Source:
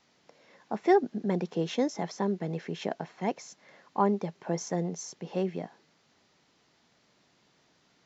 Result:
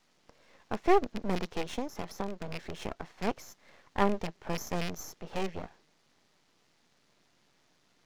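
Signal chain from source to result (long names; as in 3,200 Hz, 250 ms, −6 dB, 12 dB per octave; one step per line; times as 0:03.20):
loose part that buzzes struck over −33 dBFS, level −22 dBFS
0:01.61–0:03.13: downward compressor 6 to 1, threshold −30 dBFS, peak gain reduction 8.5 dB
half-wave rectification
level +1.5 dB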